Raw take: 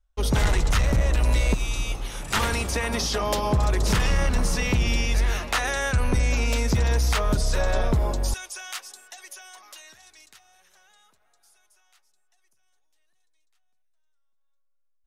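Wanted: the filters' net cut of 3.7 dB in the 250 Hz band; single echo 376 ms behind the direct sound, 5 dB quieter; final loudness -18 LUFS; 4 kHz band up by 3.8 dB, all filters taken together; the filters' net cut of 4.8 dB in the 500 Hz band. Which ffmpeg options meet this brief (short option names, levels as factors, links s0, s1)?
-af "equalizer=f=250:t=o:g=-4,equalizer=f=500:t=o:g=-5,equalizer=f=4000:t=o:g=5,aecho=1:1:376:0.562,volume=1.88"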